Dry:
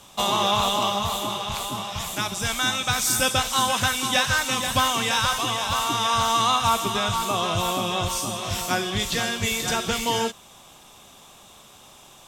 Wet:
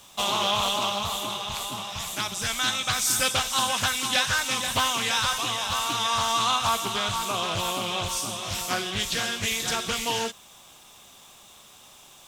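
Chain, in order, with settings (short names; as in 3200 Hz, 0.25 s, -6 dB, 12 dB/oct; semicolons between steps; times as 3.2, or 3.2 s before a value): tilt shelf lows -3 dB, about 1400 Hz; bit-crush 9-bit; Doppler distortion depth 0.37 ms; gain -3 dB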